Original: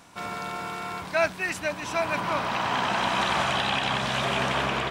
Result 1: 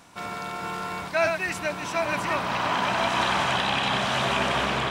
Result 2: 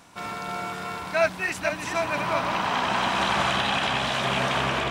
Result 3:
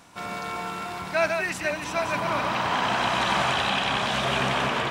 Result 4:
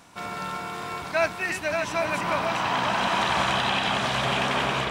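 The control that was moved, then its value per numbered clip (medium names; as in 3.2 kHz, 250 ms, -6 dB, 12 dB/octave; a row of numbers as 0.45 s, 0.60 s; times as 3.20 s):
chunks repeated in reverse, time: 628 ms, 242 ms, 142 ms, 373 ms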